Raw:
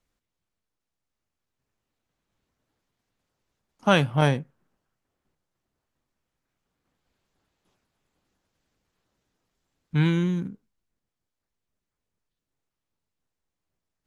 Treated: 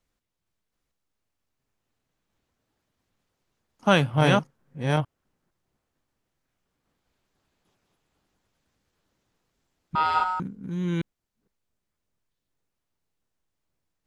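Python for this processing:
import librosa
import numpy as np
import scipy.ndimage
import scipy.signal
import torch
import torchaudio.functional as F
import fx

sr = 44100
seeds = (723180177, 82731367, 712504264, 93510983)

y = fx.reverse_delay(x, sr, ms=459, wet_db=-3)
y = fx.ring_mod(y, sr, carrier_hz=1100.0, at=(9.95, 10.4))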